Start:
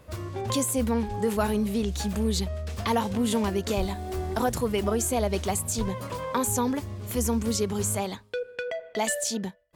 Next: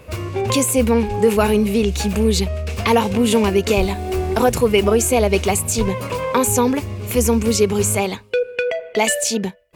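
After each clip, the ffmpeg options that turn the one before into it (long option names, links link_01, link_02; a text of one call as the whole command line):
ffmpeg -i in.wav -af "superequalizer=7b=1.58:12b=2.24,volume=8.5dB" out.wav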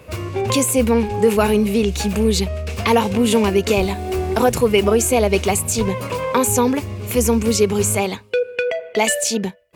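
ffmpeg -i in.wav -af "highpass=62" out.wav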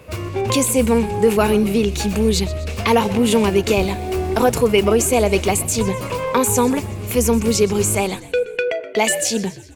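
ffmpeg -i in.wav -filter_complex "[0:a]asplit=6[link_01][link_02][link_03][link_04][link_05][link_06];[link_02]adelay=125,afreqshift=-55,volume=-17dB[link_07];[link_03]adelay=250,afreqshift=-110,volume=-22.5dB[link_08];[link_04]adelay=375,afreqshift=-165,volume=-28dB[link_09];[link_05]adelay=500,afreqshift=-220,volume=-33.5dB[link_10];[link_06]adelay=625,afreqshift=-275,volume=-39.1dB[link_11];[link_01][link_07][link_08][link_09][link_10][link_11]amix=inputs=6:normalize=0" out.wav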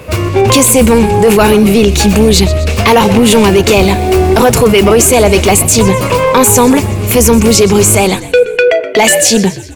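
ffmpeg -i in.wav -af "apsyclip=15dB,volume=-1.5dB" out.wav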